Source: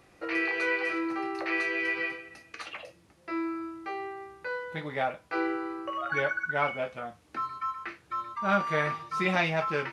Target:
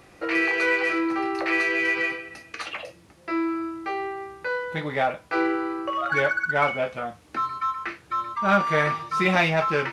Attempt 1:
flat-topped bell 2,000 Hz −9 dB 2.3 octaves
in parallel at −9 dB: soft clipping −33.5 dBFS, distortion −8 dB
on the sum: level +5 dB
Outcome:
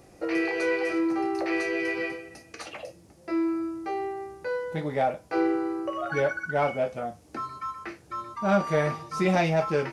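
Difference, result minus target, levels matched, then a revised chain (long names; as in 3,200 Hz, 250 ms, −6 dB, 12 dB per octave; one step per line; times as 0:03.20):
2,000 Hz band −5.0 dB
in parallel at −9 dB: soft clipping −33.5 dBFS, distortion −6 dB
on the sum: level +5 dB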